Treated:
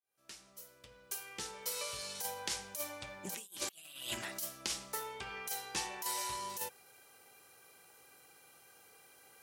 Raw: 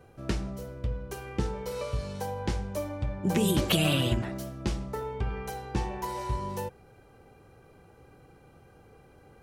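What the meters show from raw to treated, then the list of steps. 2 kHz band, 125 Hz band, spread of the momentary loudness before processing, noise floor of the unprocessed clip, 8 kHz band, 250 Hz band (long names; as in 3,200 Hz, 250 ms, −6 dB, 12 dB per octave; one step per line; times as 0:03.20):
−6.0 dB, −27.5 dB, 11 LU, −57 dBFS, +2.0 dB, −22.5 dB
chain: fade in at the beginning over 2.27 s
first difference
compressor whose output falls as the input rises −46 dBFS, ratio −0.5
highs frequency-modulated by the lows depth 0.1 ms
level +7.5 dB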